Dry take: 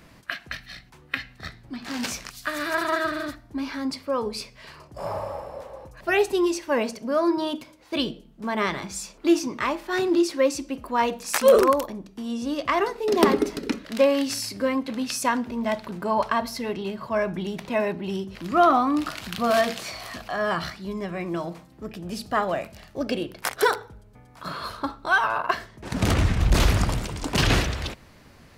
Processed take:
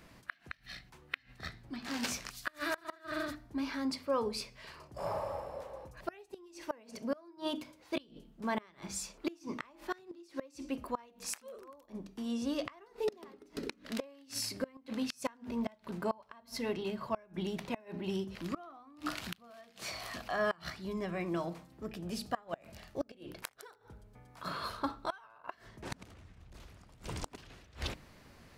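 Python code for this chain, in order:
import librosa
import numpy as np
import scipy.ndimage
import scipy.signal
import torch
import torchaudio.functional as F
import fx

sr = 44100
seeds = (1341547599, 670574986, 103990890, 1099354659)

y = fx.hum_notches(x, sr, base_hz=50, count=6)
y = fx.gate_flip(y, sr, shuts_db=-16.0, range_db=-28)
y = y * librosa.db_to_amplitude(-6.0)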